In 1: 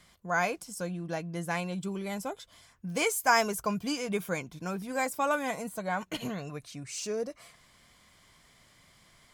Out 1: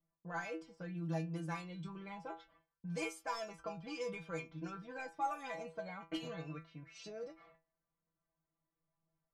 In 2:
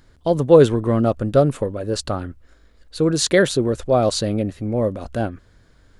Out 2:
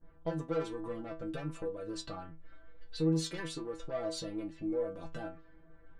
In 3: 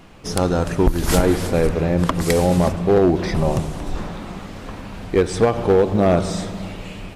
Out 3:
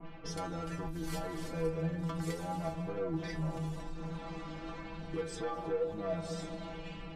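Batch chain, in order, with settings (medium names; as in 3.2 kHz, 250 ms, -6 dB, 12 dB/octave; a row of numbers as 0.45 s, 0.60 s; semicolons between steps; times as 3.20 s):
peaking EQ 120 Hz -12.5 dB 0.24 oct; saturation -15 dBFS; phaser 0.99 Hz, delay 3.7 ms, feedback 26%; compression 3:1, threshold -35 dBFS; level-controlled noise filter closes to 1.9 kHz, open at -34 dBFS; gate -57 dBFS, range -20 dB; treble shelf 5.5 kHz -5 dB; inharmonic resonator 160 Hz, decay 0.28 s, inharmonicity 0.002; level-controlled noise filter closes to 960 Hz, open at -42.5 dBFS; trim +7.5 dB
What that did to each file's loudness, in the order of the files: -11.5 LU, -18.5 LU, -19.5 LU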